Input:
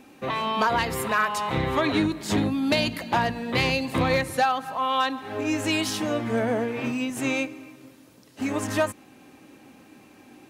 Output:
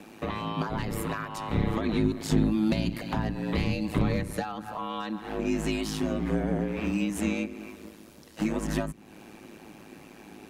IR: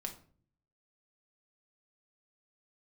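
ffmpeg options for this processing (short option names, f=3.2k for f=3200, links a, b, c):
-filter_complex "[0:a]aeval=exprs='val(0)*sin(2*PI*53*n/s)':c=same,acrossover=split=290[a][b];[b]acompressor=threshold=-39dB:ratio=6[c];[a][c]amix=inputs=2:normalize=0,volume=5.5dB"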